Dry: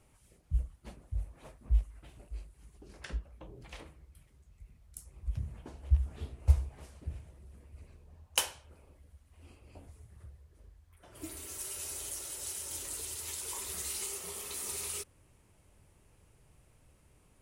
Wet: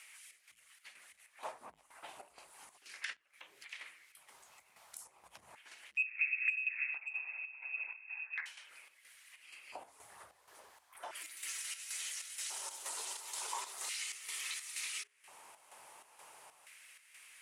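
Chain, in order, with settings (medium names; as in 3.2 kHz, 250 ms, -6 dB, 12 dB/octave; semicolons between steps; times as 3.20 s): 5.97–8.46 s: frequency inversion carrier 2.6 kHz; saturation -24.5 dBFS, distortion -7 dB; compression 2:1, threshold -47 dBFS, peak gain reduction 11 dB; bass shelf 360 Hz +9 dB; de-hum 45.98 Hz, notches 10; square tremolo 2.1 Hz, depth 65%, duty 65%; peak limiter -37 dBFS, peak gain reduction 11 dB; LFO high-pass square 0.36 Hz 860–2000 Hz; bass shelf 80 Hz -5 dB; low-pass that closes with the level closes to 390 Hz, closed at -29.5 dBFS; tape noise reduction on one side only encoder only; trim +8.5 dB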